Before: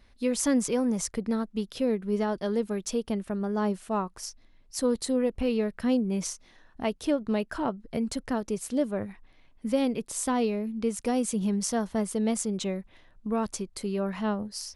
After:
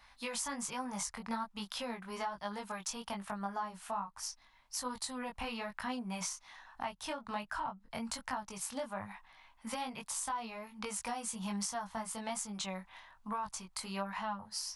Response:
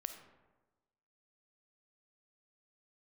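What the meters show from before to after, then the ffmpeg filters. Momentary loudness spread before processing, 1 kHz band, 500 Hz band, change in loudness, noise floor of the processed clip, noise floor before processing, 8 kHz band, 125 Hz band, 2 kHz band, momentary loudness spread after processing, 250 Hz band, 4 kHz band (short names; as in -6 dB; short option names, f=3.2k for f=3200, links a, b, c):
7 LU, -2.5 dB, -16.0 dB, -10.5 dB, -65 dBFS, -58 dBFS, -5.0 dB, -13.0 dB, -2.5 dB, 6 LU, -16.0 dB, -3.0 dB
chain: -filter_complex "[0:a]lowshelf=f=610:t=q:w=3:g=-13.5,acrossover=split=190[a][b];[b]acompressor=threshold=-40dB:ratio=6[c];[a][c]amix=inputs=2:normalize=0,flanger=delay=19.5:depth=2.8:speed=1.2,volume=6.5dB"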